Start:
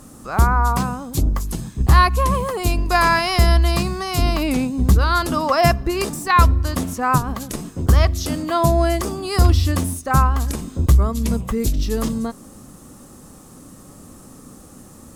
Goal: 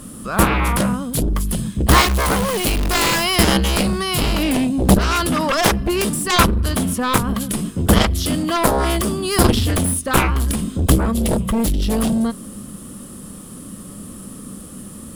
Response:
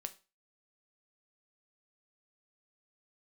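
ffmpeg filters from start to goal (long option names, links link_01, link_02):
-filter_complex "[0:a]equalizer=frequency=200:width_type=o:width=0.33:gain=9,equalizer=frequency=800:width_type=o:width=0.33:gain=-9,equalizer=frequency=3150:width_type=o:width=0.33:gain=8,equalizer=frequency=6300:width_type=o:width=0.33:gain=-6,equalizer=frequency=10000:width_type=o:width=0.33:gain=9,asettb=1/sr,asplit=3[link_01][link_02][link_03];[link_01]atrim=end=1.904[link_04];[link_02]atrim=start=1.9:end=3.24,asetpts=PTS-STARTPTS,afade=type=in:duration=0.004:curve=qsin,afade=type=out:start_time=1.336:duration=0.004:curve=qsin,acrusher=bits=5:dc=4:mix=0:aa=0.000001[link_05];[link_03]atrim=start=3.236[link_06];[link_04][link_05]acrossfade=duration=0.004:curve1=hsin:curve2=qsin[link_07];[link_07][link_06]acrossfade=duration=0.004:curve1=qsin:curve2=hsin,aeval=exprs='0.944*(cos(1*acos(clip(val(0)/0.944,-1,1)))-cos(1*PI/2))+0.473*(cos(7*acos(clip(val(0)/0.944,-1,1)))-cos(7*PI/2))':channel_layout=same,volume=-3.5dB"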